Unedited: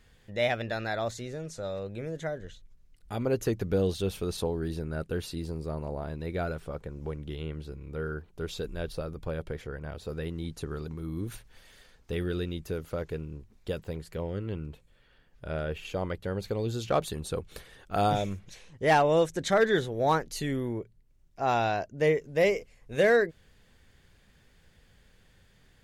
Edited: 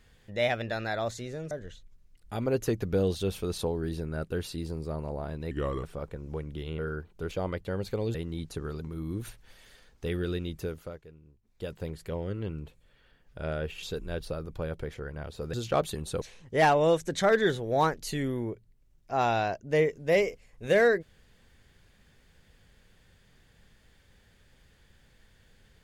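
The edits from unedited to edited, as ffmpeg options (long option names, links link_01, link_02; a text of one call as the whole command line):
ffmpeg -i in.wav -filter_complex "[0:a]asplit=12[link_01][link_02][link_03][link_04][link_05][link_06][link_07][link_08][link_09][link_10][link_11][link_12];[link_01]atrim=end=1.512[link_13];[link_02]atrim=start=2.298:end=6.304[link_14];[link_03]atrim=start=6.3:end=6.56,asetpts=PTS-STARTPTS,asetrate=35280,aresample=44100,atrim=end_sample=14332,asetpts=PTS-STARTPTS[link_15];[link_04]atrim=start=6.556:end=7.512[link_16];[link_05]atrim=start=7.968:end=8.502[link_17];[link_06]atrim=start=15.888:end=16.722[link_18];[link_07]atrim=start=10.208:end=13.09,asetpts=PTS-STARTPTS,afade=type=out:start_time=2.482:duration=0.4:silence=0.158489[link_19];[link_08]atrim=start=13.09:end=13.49,asetpts=PTS-STARTPTS,volume=-16dB[link_20];[link_09]atrim=start=13.49:end=15.892,asetpts=PTS-STARTPTS,afade=type=in:duration=0.4:silence=0.158489[link_21];[link_10]atrim=start=8.498:end=10.212[link_22];[link_11]atrim=start=16.718:end=17.402[link_23];[link_12]atrim=start=18.498[link_24];[link_13][link_14]acrossfade=duration=0.004:curve1=hsin:curve2=hsin[link_25];[link_25][link_15]acrossfade=duration=0.004:curve1=hsin:curve2=hsin[link_26];[link_26][link_16]acrossfade=duration=0.004:curve1=hsin:curve2=hsin[link_27];[link_27][link_17]acrossfade=duration=0.004:curve1=hsin:curve2=hsin[link_28];[link_28][link_18]acrossfade=duration=0.004:curve1=hsin:curve2=hsin[link_29];[link_19][link_20][link_21]concat=n=3:v=0:a=1[link_30];[link_29][link_30]acrossfade=duration=0.004:curve1=hsin:curve2=hsin[link_31];[link_31][link_22]acrossfade=duration=0.004:curve1=hsin:curve2=hsin[link_32];[link_32][link_23]acrossfade=duration=0.004:curve1=hsin:curve2=hsin[link_33];[link_33][link_24]acrossfade=duration=0.004:curve1=hsin:curve2=hsin" out.wav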